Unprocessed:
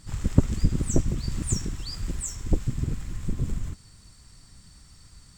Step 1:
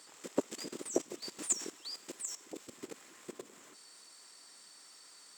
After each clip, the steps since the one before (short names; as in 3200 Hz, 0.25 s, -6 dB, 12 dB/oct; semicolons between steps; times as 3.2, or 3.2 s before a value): HPF 370 Hz 24 dB/oct; dynamic EQ 1500 Hz, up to -4 dB, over -52 dBFS, Q 0.96; level quantiser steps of 15 dB; gain +3 dB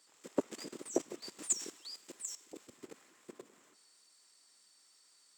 three-band expander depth 40%; gain -4 dB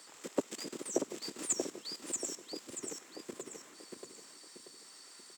on a send: feedback echo 0.634 s, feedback 31%, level -6 dB; on the sum: three-band squash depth 40%; gain +4 dB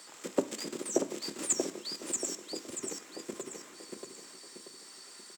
echo 1.053 s -20.5 dB; on a send at -9.5 dB: reverb RT60 0.50 s, pre-delay 3 ms; on the sum: gain +3.5 dB